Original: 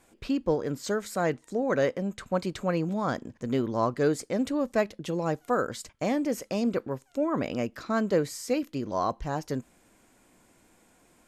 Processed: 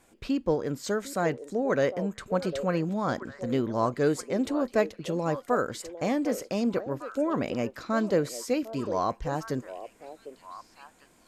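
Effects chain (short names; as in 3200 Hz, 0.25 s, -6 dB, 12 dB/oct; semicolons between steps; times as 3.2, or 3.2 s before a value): delay with a stepping band-pass 0.752 s, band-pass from 500 Hz, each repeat 1.4 oct, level -8.5 dB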